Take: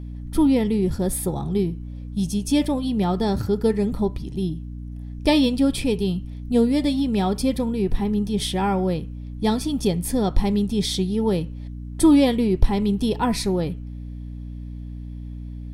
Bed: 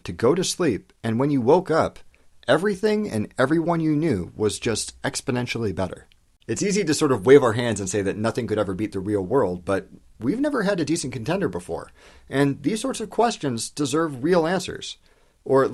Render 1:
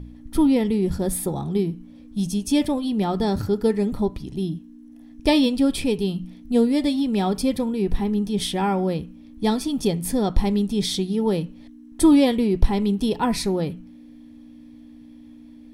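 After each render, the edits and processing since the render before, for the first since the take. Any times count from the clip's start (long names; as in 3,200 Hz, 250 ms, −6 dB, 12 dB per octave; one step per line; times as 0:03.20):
hum removal 60 Hz, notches 3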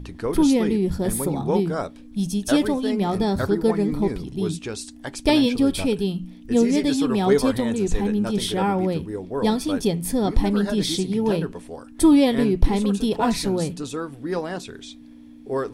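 mix in bed −7.5 dB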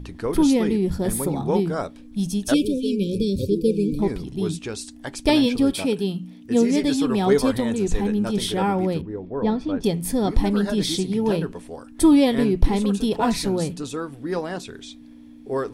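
0:02.54–0:03.99: linear-phase brick-wall band-stop 570–2,300 Hz
0:05.71–0:06.76: high-pass filter 170 Hz → 79 Hz
0:09.01–0:09.84: head-to-tape spacing loss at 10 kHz 30 dB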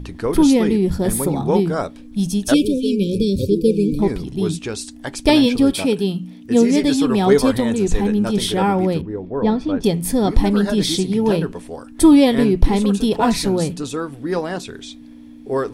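level +4.5 dB
brickwall limiter −1 dBFS, peak gain reduction 1.5 dB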